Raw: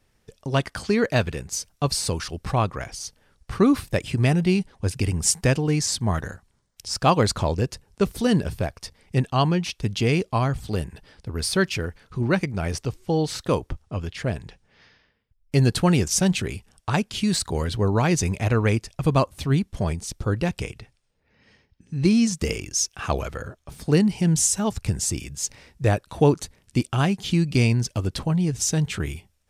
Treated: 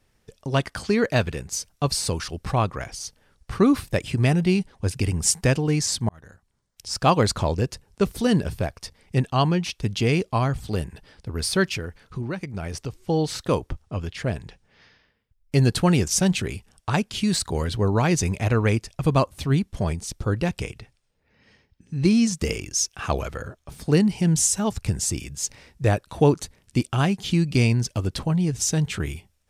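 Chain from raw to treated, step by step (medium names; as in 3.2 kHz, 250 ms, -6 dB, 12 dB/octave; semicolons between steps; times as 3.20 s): 6.09–7.02 s: fade in; 11.74–13.04 s: compression 5:1, threshold -27 dBFS, peak gain reduction 10.5 dB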